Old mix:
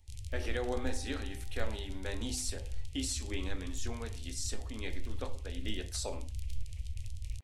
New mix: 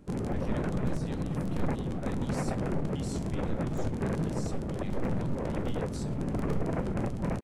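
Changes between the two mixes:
speech -9.5 dB; background: remove inverse Chebyshev band-stop 160–1600 Hz, stop band 40 dB

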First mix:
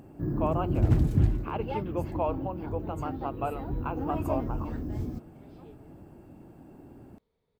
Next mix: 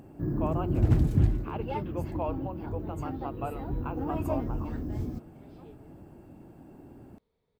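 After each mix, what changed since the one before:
speech -4.0 dB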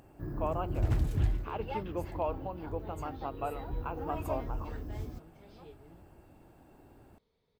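first sound: add bell 210 Hz -12 dB 2.4 oct; second sound: add high shelf 3500 Hz +10.5 dB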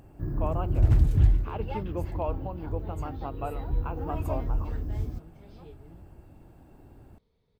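master: add low shelf 210 Hz +10 dB

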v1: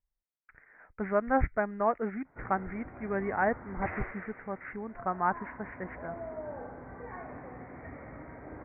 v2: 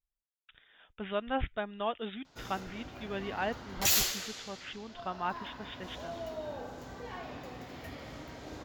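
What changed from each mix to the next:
speech -6.0 dB; master: remove steep low-pass 2200 Hz 96 dB/oct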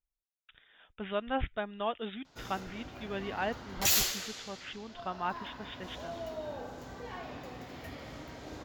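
none

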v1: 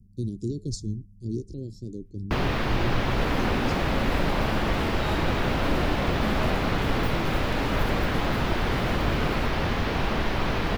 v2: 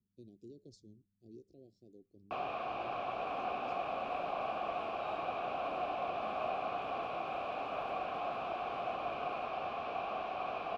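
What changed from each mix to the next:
master: add vowel filter a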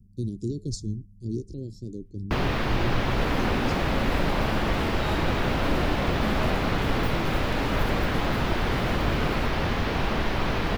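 master: remove vowel filter a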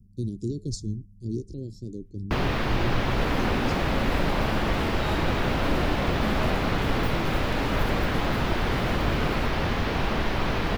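none

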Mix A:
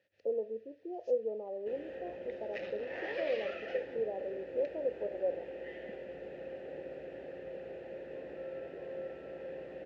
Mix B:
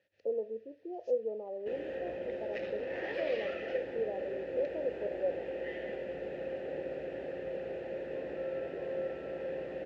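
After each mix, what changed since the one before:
second sound +5.5 dB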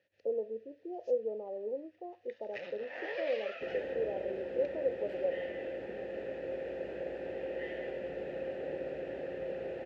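second sound: entry +1.95 s

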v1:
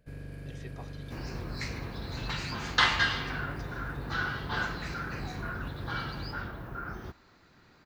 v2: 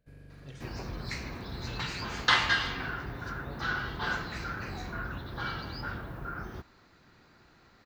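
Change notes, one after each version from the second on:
first sound -9.0 dB; second sound: entry -0.50 s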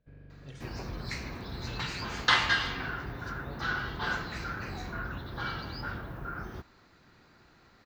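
first sound: add air absorption 290 m

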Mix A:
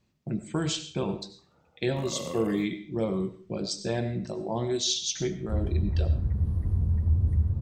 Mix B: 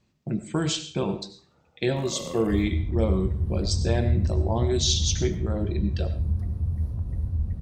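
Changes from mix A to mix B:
speech +3.0 dB; second sound: entry -3.00 s

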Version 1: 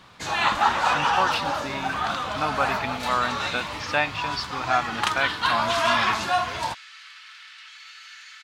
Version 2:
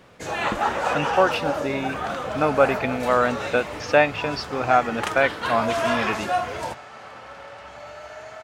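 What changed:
speech +6.0 dB; second sound: remove inverse Chebyshev high-pass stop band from 530 Hz, stop band 60 dB; master: add graphic EQ 500/1000/4000 Hz +10/-7/-9 dB

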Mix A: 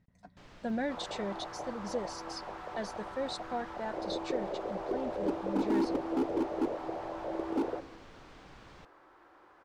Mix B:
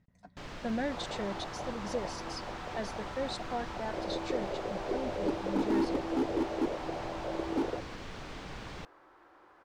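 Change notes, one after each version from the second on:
first sound +11.0 dB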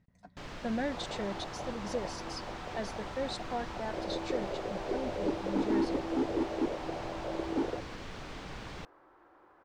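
second sound: add high shelf 2300 Hz -10.5 dB

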